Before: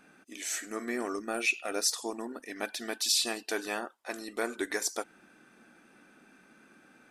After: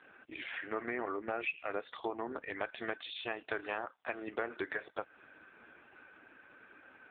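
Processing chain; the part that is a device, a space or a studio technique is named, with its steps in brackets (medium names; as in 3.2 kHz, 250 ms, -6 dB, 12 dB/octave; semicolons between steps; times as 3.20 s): voicemail (band-pass 420–3000 Hz; compression 6:1, threshold -39 dBFS, peak gain reduction 14 dB; trim +7.5 dB; AMR-NB 5.15 kbps 8 kHz)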